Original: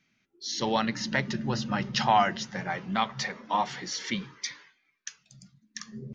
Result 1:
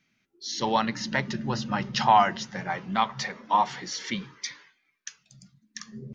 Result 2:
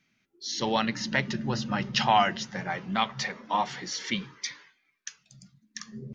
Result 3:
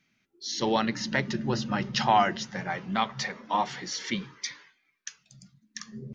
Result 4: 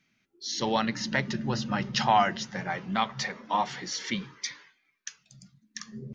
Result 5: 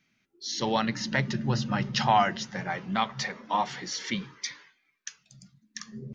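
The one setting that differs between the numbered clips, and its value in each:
dynamic equaliser, frequency: 970, 2,800, 360, 7,800, 130 Hertz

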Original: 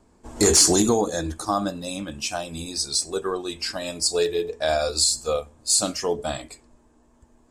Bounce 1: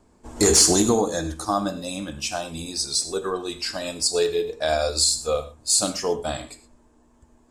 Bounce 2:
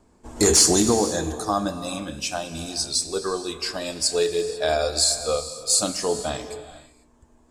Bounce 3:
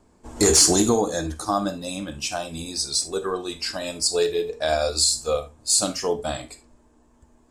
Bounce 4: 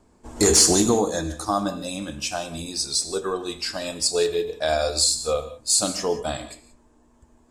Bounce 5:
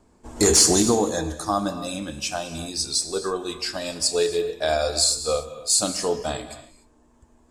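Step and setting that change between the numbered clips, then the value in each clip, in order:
reverb whose tail is shaped and stops, gate: 140, 520, 90, 200, 320 milliseconds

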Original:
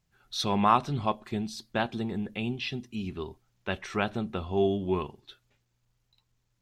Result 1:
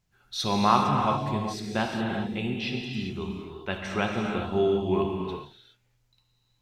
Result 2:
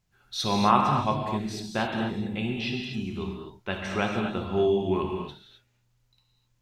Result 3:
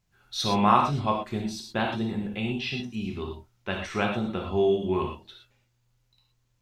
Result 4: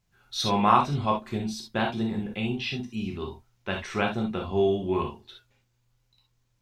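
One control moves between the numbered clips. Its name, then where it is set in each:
reverb whose tail is shaped and stops, gate: 440, 290, 140, 90 milliseconds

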